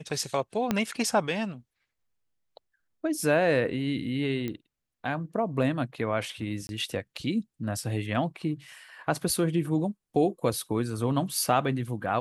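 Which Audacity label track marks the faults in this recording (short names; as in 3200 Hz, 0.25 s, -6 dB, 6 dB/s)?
0.710000	0.710000	pop -11 dBFS
4.480000	4.480000	pop -20 dBFS
6.670000	6.690000	gap 21 ms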